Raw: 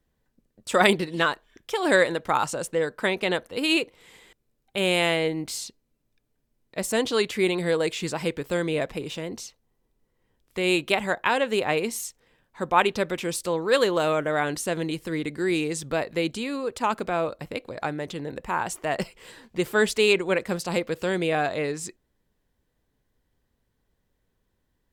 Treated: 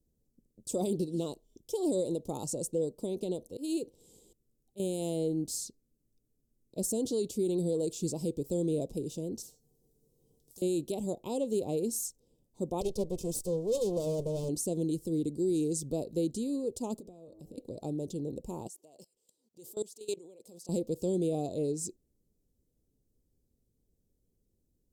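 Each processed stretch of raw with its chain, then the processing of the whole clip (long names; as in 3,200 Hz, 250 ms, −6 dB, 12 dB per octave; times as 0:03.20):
0:03.03–0:04.80: volume swells 159 ms + downward compressor 2 to 1, threshold −26 dBFS
0:09.42–0:10.62: low-shelf EQ 190 Hz −7 dB + tuned comb filter 150 Hz, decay 0.16 s, harmonics odd, mix 80% + every bin compressed towards the loudest bin 4 to 1
0:12.81–0:14.49: lower of the sound and its delayed copy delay 1.9 ms + highs frequency-modulated by the lows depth 0.11 ms
0:16.99–0:17.58: hum removal 107 Hz, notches 19 + downward compressor 16 to 1, threshold −40 dBFS
0:18.67–0:20.69: high-pass filter 870 Hz 6 dB per octave + output level in coarse steps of 23 dB
whole clip: Chebyshev band-stop filter 390–6,800 Hz, order 2; brickwall limiter −21 dBFS; level −1.5 dB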